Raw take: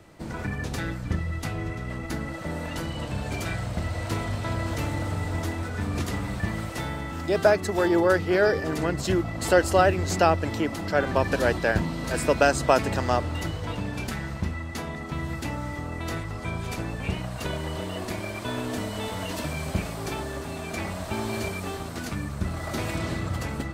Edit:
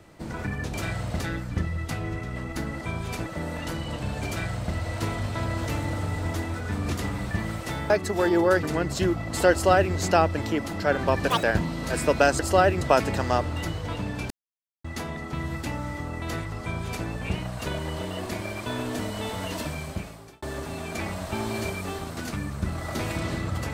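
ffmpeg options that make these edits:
-filter_complex "[0:a]asplit=14[s0][s1][s2][s3][s4][s5][s6][s7][s8][s9][s10][s11][s12][s13];[s0]atrim=end=0.742[s14];[s1]atrim=start=3.368:end=3.832[s15];[s2]atrim=start=0.738:end=2.352[s16];[s3]atrim=start=16.398:end=16.852[s17];[s4]atrim=start=2.348:end=6.992[s18];[s5]atrim=start=7.488:end=8.222[s19];[s6]atrim=start=8.708:end=11.384[s20];[s7]atrim=start=11.38:end=11.64,asetpts=PTS-STARTPTS,asetrate=85995,aresample=44100[s21];[s8]atrim=start=11.636:end=12.602[s22];[s9]atrim=start=9.598:end=10.022[s23];[s10]atrim=start=12.598:end=14.09,asetpts=PTS-STARTPTS,afade=t=out:st=1.488:d=0.004:c=hsin[s24];[s11]atrim=start=14.09:end=14.63,asetpts=PTS-STARTPTS,volume=0[s25];[s12]atrim=start=14.63:end=20.21,asetpts=PTS-STARTPTS,afade=t=in:d=0.004:c=hsin,afade=t=out:st=4.73:d=0.85[s26];[s13]atrim=start=20.21,asetpts=PTS-STARTPTS,afade=t=in:d=0.004:c=hsin[s27];[s14][s15]acrossfade=d=0.004:c1=hsin:c2=hsin[s28];[s28][s16]acrossfade=d=0.004:c1=hsin:c2=hsin[s29];[s29][s17]acrossfade=d=0.004:c1=hsin:c2=hsin[s30];[s30][s18]acrossfade=d=0.004:c1=hsin:c2=hsin[s31];[s31][s19]acrossfade=d=0.004:c1=hsin:c2=hsin[s32];[s32][s20]acrossfade=d=0.004:c1=hsin:c2=hsin[s33];[s33][s21]acrossfade=d=0.004:c1=hsin:c2=hsin[s34];[s34][s22]acrossfade=d=0.004:c1=hsin:c2=hsin[s35];[s35][s23]acrossfade=d=0.004:c1=hsin:c2=hsin[s36];[s24][s25][s26][s27]concat=n=4:v=0:a=1[s37];[s36][s37]acrossfade=d=0.004:c1=hsin:c2=hsin"

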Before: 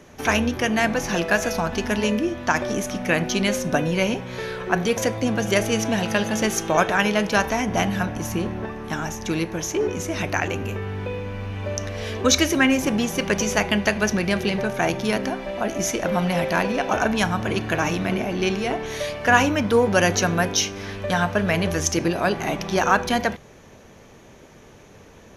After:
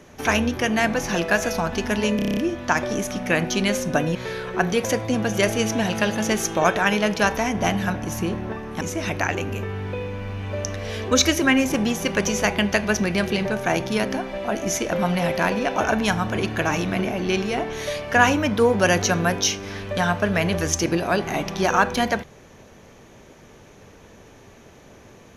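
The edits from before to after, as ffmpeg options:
-filter_complex "[0:a]asplit=10[s0][s1][s2][s3][s4][s5][s6][s7][s8][s9];[s0]atrim=end=2.192[s10];[s1]atrim=start=2.158:end=2.192[s11];[s2]atrim=start=2.158:end=2.192[s12];[s3]atrim=start=2.158:end=2.192[s13];[s4]atrim=start=2.158:end=2.192[s14];[s5]atrim=start=2.158:end=2.192[s15];[s6]atrim=start=2.158:end=2.192[s16];[s7]atrim=start=2.158:end=3.942[s17];[s8]atrim=start=4.278:end=8.942[s18];[s9]atrim=start=9.938[s19];[s10][s11]acrossfade=d=0.004:c1=hsin:c2=hsin[s20];[s20][s12]acrossfade=d=0.004:c1=hsin:c2=hsin[s21];[s21][s13]acrossfade=d=0.004:c1=hsin:c2=hsin[s22];[s22][s14]acrossfade=d=0.004:c1=hsin:c2=hsin[s23];[s23][s15]acrossfade=d=0.004:c1=hsin:c2=hsin[s24];[s24][s16]acrossfade=d=0.004:c1=hsin:c2=hsin[s25];[s25][s17]acrossfade=d=0.004:c1=hsin:c2=hsin[s26];[s26][s18]acrossfade=d=0.004:c1=hsin:c2=hsin[s27];[s27][s19]acrossfade=d=0.004:c1=hsin:c2=hsin"

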